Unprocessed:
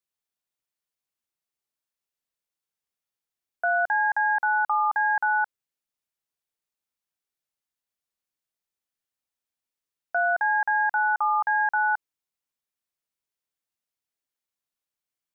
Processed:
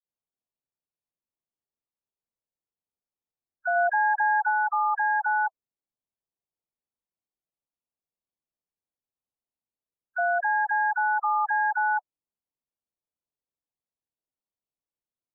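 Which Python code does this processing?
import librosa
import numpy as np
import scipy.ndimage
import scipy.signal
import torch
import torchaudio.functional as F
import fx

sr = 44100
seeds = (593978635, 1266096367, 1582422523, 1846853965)

y = fx.wiener(x, sr, points=25)
y = fx.spec_gate(y, sr, threshold_db=-15, keep='strong')
y = fx.low_shelf(y, sr, hz=470.0, db=8.5, at=(3.71, 4.46), fade=0.02)
y = fx.dispersion(y, sr, late='lows', ms=52.0, hz=1200.0)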